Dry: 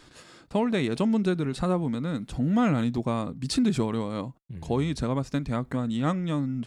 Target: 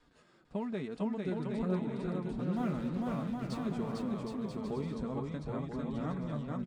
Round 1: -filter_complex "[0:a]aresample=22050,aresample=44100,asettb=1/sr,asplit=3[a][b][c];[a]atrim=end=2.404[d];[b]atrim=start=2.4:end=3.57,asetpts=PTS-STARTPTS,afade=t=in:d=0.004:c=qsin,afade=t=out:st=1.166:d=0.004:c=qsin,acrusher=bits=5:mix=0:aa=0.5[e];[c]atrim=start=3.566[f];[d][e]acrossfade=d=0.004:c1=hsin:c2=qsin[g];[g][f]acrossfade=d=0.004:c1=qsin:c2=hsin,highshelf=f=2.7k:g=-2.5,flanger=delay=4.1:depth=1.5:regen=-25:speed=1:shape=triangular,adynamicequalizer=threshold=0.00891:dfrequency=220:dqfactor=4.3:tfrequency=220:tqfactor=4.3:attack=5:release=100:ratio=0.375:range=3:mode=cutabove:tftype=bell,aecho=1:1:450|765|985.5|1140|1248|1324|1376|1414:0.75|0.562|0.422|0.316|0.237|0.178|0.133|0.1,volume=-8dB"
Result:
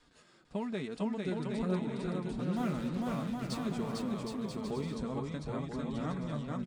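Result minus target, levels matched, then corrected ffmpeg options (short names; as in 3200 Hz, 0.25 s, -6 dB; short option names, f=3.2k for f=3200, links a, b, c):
4000 Hz band +5.5 dB
-filter_complex "[0:a]aresample=22050,aresample=44100,asettb=1/sr,asplit=3[a][b][c];[a]atrim=end=2.404[d];[b]atrim=start=2.4:end=3.57,asetpts=PTS-STARTPTS,afade=t=in:d=0.004:c=qsin,afade=t=out:st=1.166:d=0.004:c=qsin,acrusher=bits=5:mix=0:aa=0.5[e];[c]atrim=start=3.566[f];[d][e]acrossfade=d=0.004:c1=hsin:c2=qsin[g];[g][f]acrossfade=d=0.004:c1=qsin:c2=hsin,highshelf=f=2.7k:g=-11.5,flanger=delay=4.1:depth=1.5:regen=-25:speed=1:shape=triangular,adynamicequalizer=threshold=0.00891:dfrequency=220:dqfactor=4.3:tfrequency=220:tqfactor=4.3:attack=5:release=100:ratio=0.375:range=3:mode=cutabove:tftype=bell,aecho=1:1:450|765|985.5|1140|1248|1324|1376|1414:0.75|0.562|0.422|0.316|0.237|0.178|0.133|0.1,volume=-8dB"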